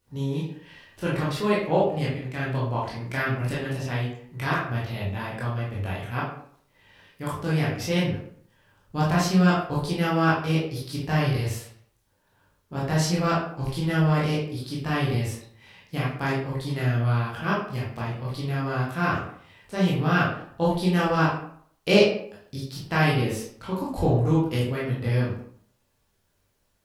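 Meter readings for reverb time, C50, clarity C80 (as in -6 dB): 0.60 s, 2.5 dB, 7.0 dB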